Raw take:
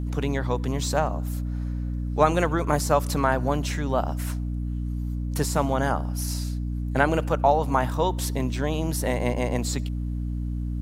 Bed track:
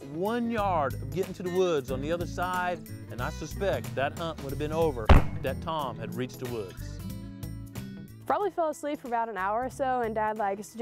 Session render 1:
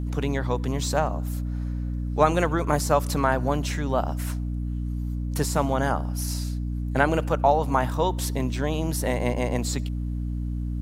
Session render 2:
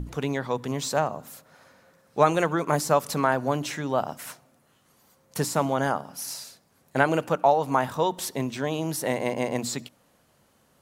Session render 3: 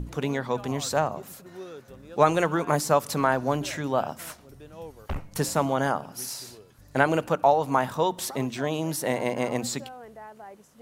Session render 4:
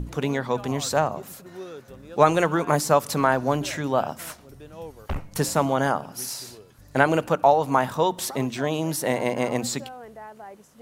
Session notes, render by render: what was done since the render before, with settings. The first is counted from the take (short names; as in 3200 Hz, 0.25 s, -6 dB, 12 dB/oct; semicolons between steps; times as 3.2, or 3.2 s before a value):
nothing audible
notches 60/120/180/240/300 Hz
add bed track -15 dB
gain +2.5 dB